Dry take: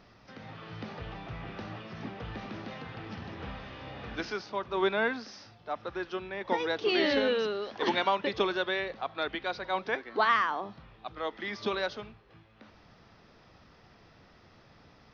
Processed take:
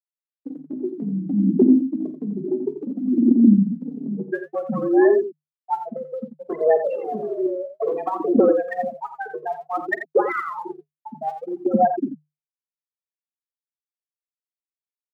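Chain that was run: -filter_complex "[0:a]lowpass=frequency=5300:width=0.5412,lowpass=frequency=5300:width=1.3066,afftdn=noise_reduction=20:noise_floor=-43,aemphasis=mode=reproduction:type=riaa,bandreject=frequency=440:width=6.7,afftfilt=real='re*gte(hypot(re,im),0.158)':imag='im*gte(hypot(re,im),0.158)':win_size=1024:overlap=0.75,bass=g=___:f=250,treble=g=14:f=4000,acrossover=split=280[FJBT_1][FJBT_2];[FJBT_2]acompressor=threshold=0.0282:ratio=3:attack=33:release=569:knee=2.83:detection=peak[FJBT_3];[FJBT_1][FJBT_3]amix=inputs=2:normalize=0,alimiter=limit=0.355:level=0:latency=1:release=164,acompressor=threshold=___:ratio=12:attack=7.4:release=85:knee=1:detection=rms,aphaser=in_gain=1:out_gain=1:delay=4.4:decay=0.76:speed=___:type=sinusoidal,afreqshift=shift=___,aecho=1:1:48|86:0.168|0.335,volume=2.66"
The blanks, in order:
13, 0.0251, 0.59, 150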